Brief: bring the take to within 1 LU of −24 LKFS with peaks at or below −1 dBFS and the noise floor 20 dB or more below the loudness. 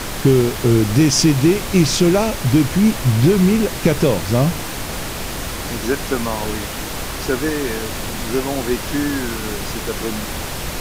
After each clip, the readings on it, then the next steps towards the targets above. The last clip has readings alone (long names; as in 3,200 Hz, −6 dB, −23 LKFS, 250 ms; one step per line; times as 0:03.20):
background noise floor −27 dBFS; target noise floor −39 dBFS; integrated loudness −18.5 LKFS; sample peak −2.0 dBFS; target loudness −24.0 LKFS
→ noise reduction from a noise print 12 dB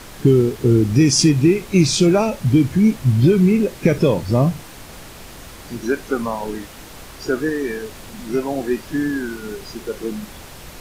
background noise floor −39 dBFS; integrated loudness −18.0 LKFS; sample peak −3.0 dBFS; target loudness −24.0 LKFS
→ level −6 dB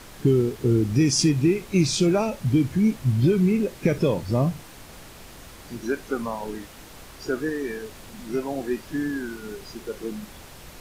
integrated loudness −24.0 LKFS; sample peak −9.0 dBFS; background noise floor −45 dBFS